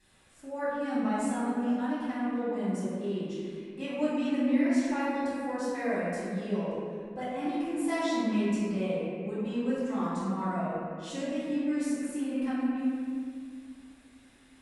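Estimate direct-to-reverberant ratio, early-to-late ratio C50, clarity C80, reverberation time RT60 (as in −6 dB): −12.5 dB, −4.0 dB, −1.5 dB, 2.0 s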